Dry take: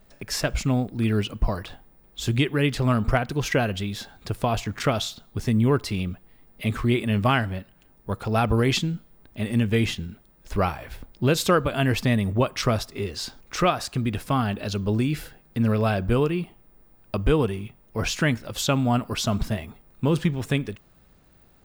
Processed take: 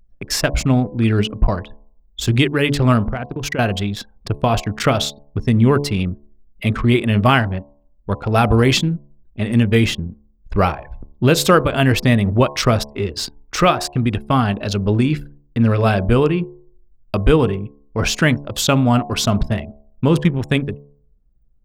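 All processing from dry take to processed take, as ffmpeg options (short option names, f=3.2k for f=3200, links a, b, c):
-filter_complex "[0:a]asettb=1/sr,asplit=3[a][b][c];[a]atrim=end=3.084[d];[b]atrim=start=3.08:end=3.59,asetpts=PTS-STARTPTS,afade=t=in:d=0.004:c=qsin,afade=t=out:st=0.506:d=0.004:c=qsin,agate=range=-9dB:threshold=-31dB:ratio=16:release=100:detection=peak,acompressor=threshold=-26dB:ratio=10:attack=3.2:release=140:knee=1:detection=peak[e];[c]atrim=start=3.586[f];[d][e]acrossfade=d=0.004:c1=hsin:c2=qsin[g];[g][f]acrossfade=d=0.004:c1=qsin:c2=hsin,anlmdn=6.31,bandreject=f=71.8:t=h:w=4,bandreject=f=143.6:t=h:w=4,bandreject=f=215.4:t=h:w=4,bandreject=f=287.2:t=h:w=4,bandreject=f=359:t=h:w=4,bandreject=f=430.8:t=h:w=4,bandreject=f=502.6:t=h:w=4,bandreject=f=574.4:t=h:w=4,bandreject=f=646.2:t=h:w=4,bandreject=f=718:t=h:w=4,bandreject=f=789.8:t=h:w=4,bandreject=f=861.6:t=h:w=4,bandreject=f=933.4:t=h:w=4,bandreject=f=1.0052k:t=h:w=4,bandreject=f=1.077k:t=h:w=4,volume=7.5dB"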